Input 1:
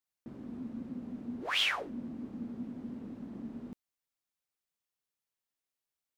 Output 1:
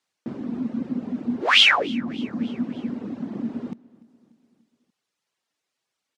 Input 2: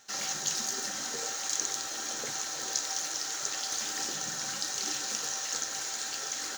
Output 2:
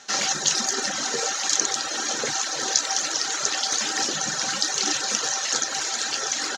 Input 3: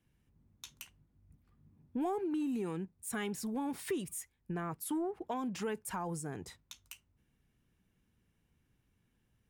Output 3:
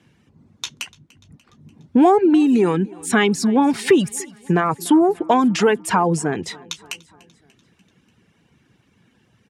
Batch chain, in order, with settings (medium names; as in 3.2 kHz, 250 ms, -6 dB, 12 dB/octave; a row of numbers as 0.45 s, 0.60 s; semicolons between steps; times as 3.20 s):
reverb removal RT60 0.85 s; band-pass 140–6400 Hz; feedback delay 293 ms, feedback 58%, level -23.5 dB; peak normalisation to -3 dBFS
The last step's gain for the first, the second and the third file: +15.5 dB, +13.0 dB, +22.0 dB